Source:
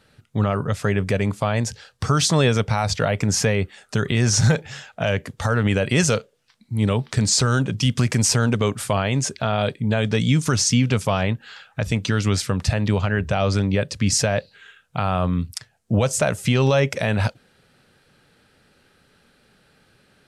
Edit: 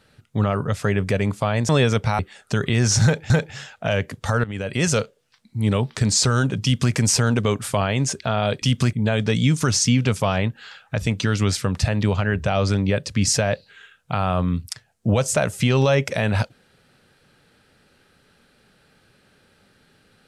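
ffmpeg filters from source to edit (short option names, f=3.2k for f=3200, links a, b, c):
-filter_complex "[0:a]asplit=7[a][b][c][d][e][f][g];[a]atrim=end=1.692[h];[b]atrim=start=2.328:end=2.832[i];[c]atrim=start=3.608:end=4.722[j];[d]atrim=start=4.458:end=5.6,asetpts=PTS-STARTPTS,afade=t=out:st=1.138:d=0.004:c=hsin:silence=0.158489[k];[e]atrim=start=5.6:end=9.782,asetpts=PTS-STARTPTS,afade=t=in:d=0.56:silence=0.158489[l];[f]atrim=start=7.788:end=8.102[m];[g]atrim=start=9.778[n];[h][i]acrossfade=d=0.004:c1=hsin:c2=hsin[o];[o][j]acrossfade=d=0.004:c1=hsin:c2=hsin[p];[k][l]concat=n=2:v=0:a=1[q];[p][q]acrossfade=d=0.004:c1=hsin:c2=hsin[r];[r][m]acrossfade=d=0.004:c1=hsin:c2=hsin[s];[s][n]acrossfade=d=0.004:c1=hsin:c2=hsin"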